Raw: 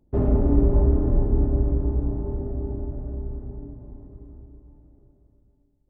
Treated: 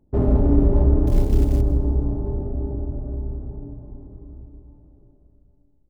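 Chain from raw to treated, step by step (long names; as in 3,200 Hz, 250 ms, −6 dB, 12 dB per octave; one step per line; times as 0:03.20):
adaptive Wiener filter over 15 samples
hum removal 49.29 Hz, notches 15
0:01.07–0:01.61: floating-point word with a short mantissa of 4 bits
single-tap delay 159 ms −16 dB
convolution reverb RT60 2.4 s, pre-delay 55 ms, DRR 17 dB
level +3 dB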